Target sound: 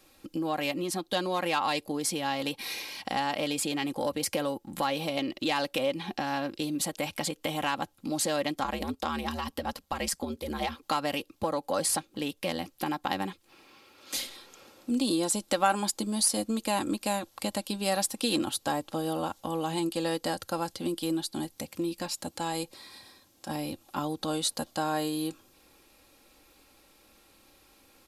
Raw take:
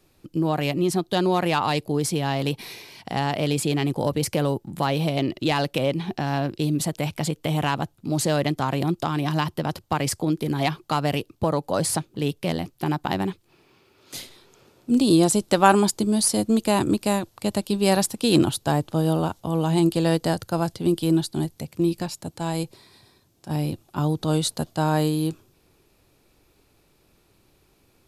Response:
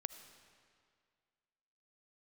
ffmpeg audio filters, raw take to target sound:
-filter_complex "[0:a]asplit=3[a][b][c];[a]afade=t=out:st=8.63:d=0.02[d];[b]aeval=exprs='val(0)*sin(2*PI*76*n/s)':c=same,afade=t=in:st=8.63:d=0.02,afade=t=out:st=10.81:d=0.02[e];[c]afade=t=in:st=10.81:d=0.02[f];[d][e][f]amix=inputs=3:normalize=0,acompressor=threshold=-34dB:ratio=2,lowshelf=f=360:g=-10,aecho=1:1:3.7:0.55,volume=4dB"

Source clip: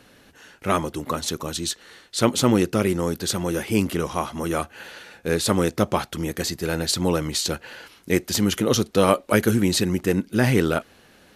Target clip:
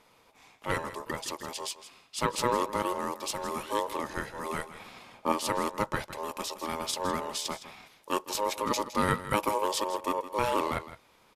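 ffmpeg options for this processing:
-filter_complex "[0:a]asettb=1/sr,asplit=3[a][b][c];[a]atrim=end=4.714[d];[b]atrim=start=4.71:end=5.32,asetpts=PTS-STARTPTS,afade=t=in:d=0.004:c=qsin,afade=t=out:st=0.606:d=0.004:c=qsin,lowshelf=f=410:g=11.5[e];[c]atrim=start=5.316[f];[d][e]acrossfade=d=0.004:c1=hsin:c2=qsin[g];[g][f]acrossfade=d=0.004:c1=qsin:c2=hsin,aeval=exprs='val(0)*sin(2*PI*730*n/s)':c=same,aecho=1:1:162:0.2,volume=-6.5dB"

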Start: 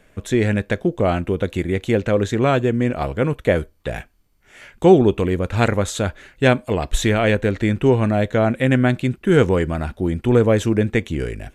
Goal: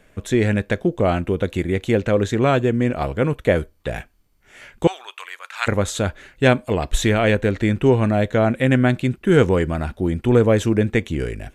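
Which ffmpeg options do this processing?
-filter_complex "[0:a]asettb=1/sr,asplit=3[a][b][c];[a]atrim=end=4.874[d];[b]atrim=start=4.87:end=5.67,asetpts=PTS-STARTPTS,afade=t=in:d=0.004:c=qsin,afade=t=out:st=0.796:d=0.004:c=qsin,highpass=f=1.1k:w=0.5412,highpass=f=1.1k:w=1.3066[e];[c]atrim=start=5.666[f];[d][e]acrossfade=d=0.004:c1=hsin:c2=qsin[g];[g][f]acrossfade=d=0.004:c1=qsin:c2=hsin"

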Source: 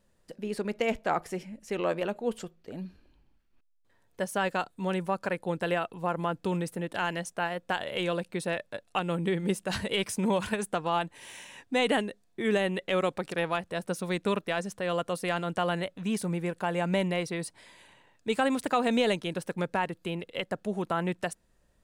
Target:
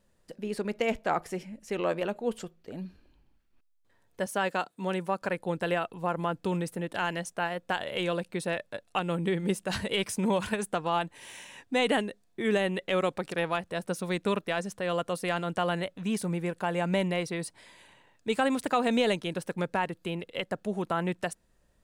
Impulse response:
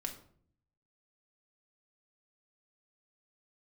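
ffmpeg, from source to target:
-filter_complex "[0:a]asettb=1/sr,asplit=3[a][b][c];[a]atrim=end=4.264[d];[b]atrim=start=4.26:end=5.22,asetpts=PTS-STARTPTS,afade=t=in:d=0.004:c=qsin,afade=t=out:st=0.956:d=0.004:c=qsin,highpass=170[e];[c]atrim=start=5.216[f];[d][e]acrossfade=d=0.004:c1=hsin:c2=qsin[g];[g][f]acrossfade=d=0.004:c1=qsin:c2=hsin"

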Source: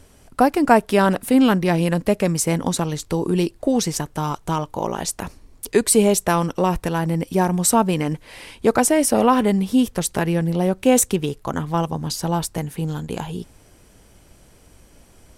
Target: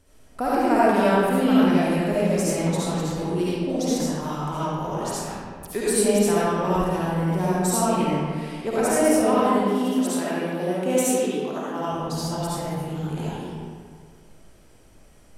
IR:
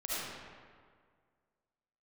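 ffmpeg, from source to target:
-filter_complex "[0:a]asettb=1/sr,asplit=3[a][b][c];[a]atrim=end=9.214[d];[b]atrim=start=9.21:end=11.87,asetpts=PTS-STARTPTS,afade=t=in:d=0.004:c=qsin,afade=t=out:st=2.656:d=0.004:c=qsin,highpass=f=210:w=0.5412,highpass=f=210:w=1.3066[e];[c]atrim=start=11.866[f];[d][e]acrossfade=d=0.004:c1=hsin:c2=qsin[g];[g][f]acrossfade=d=0.004:c1=qsin:c2=hsin[h];[1:a]atrim=start_sample=2205[i];[h][i]afir=irnorm=-1:irlink=0,volume=-7.5dB"

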